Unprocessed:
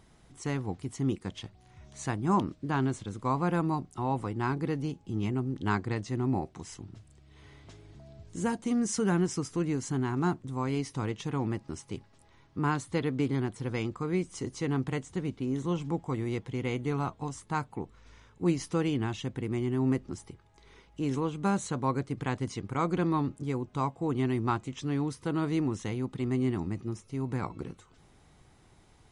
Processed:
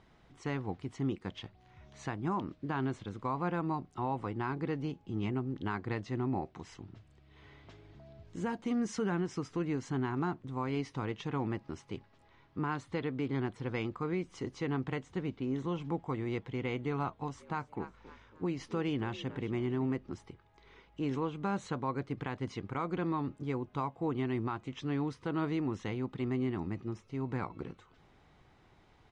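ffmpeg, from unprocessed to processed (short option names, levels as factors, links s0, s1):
-filter_complex "[0:a]asplit=3[s0][s1][s2];[s0]afade=t=out:st=17.38:d=0.02[s3];[s1]asplit=4[s4][s5][s6][s7];[s5]adelay=275,afreqshift=50,volume=0.141[s8];[s6]adelay=550,afreqshift=100,volume=0.055[s9];[s7]adelay=825,afreqshift=150,volume=0.0214[s10];[s4][s8][s9][s10]amix=inputs=4:normalize=0,afade=t=in:st=17.38:d=0.02,afade=t=out:st=19.92:d=0.02[s11];[s2]afade=t=in:st=19.92:d=0.02[s12];[s3][s11][s12]amix=inputs=3:normalize=0,lowpass=3500,lowshelf=f=320:g=-5,alimiter=level_in=1.06:limit=0.0631:level=0:latency=1:release=162,volume=0.944"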